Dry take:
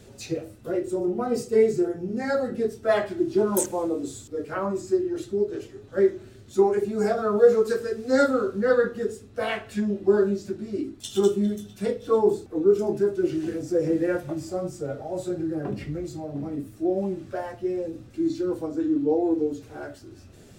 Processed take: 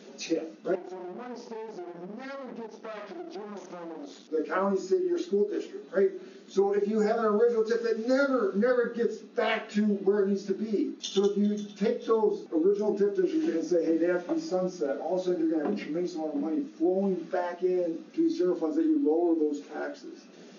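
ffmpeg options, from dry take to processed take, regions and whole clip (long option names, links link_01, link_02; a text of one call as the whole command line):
ffmpeg -i in.wav -filter_complex "[0:a]asettb=1/sr,asplit=3[link_01][link_02][link_03];[link_01]atrim=end=0.754[link_04];[link_02]atrim=start=0.75:end=4.3,asetpts=PTS-STARTPTS,afade=type=in:duration=0.004:curve=qsin,afade=type=out:start_time=3.546:duration=0.004:curve=qsin,bandreject=frequency=6600:width=7.3,acompressor=threshold=-34dB:ratio=8:attack=3.2:release=140:knee=1:detection=peak,aeval=exprs='max(val(0),0)':channel_layout=same[link_05];[link_03]atrim=start=4.296[link_06];[link_04][link_05]acrossfade=duration=0.004:curve1=hsin:curve2=qsin[link_07];[link_07][link_06]acrossfade=duration=0.004:curve1=qsin:curve2=hsin,afftfilt=real='re*between(b*sr/4096,170,6800)':imag='im*between(b*sr/4096,170,6800)':win_size=4096:overlap=0.75,acompressor=threshold=-25dB:ratio=4,volume=2.5dB" out.wav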